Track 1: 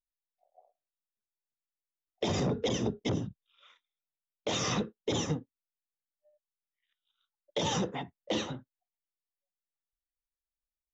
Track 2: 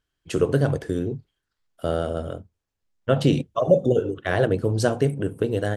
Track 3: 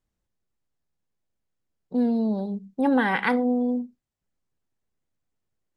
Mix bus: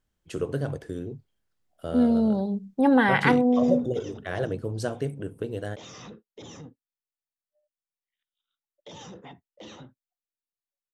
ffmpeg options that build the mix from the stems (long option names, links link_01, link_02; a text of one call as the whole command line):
ffmpeg -i stem1.wav -i stem2.wav -i stem3.wav -filter_complex "[0:a]alimiter=level_in=5.5dB:limit=-24dB:level=0:latency=1:release=14,volume=-5.5dB,adelay=1300,volume=-6.5dB[link_01];[1:a]volume=-8.5dB[link_02];[2:a]volume=2dB[link_03];[link_01][link_02][link_03]amix=inputs=3:normalize=0" out.wav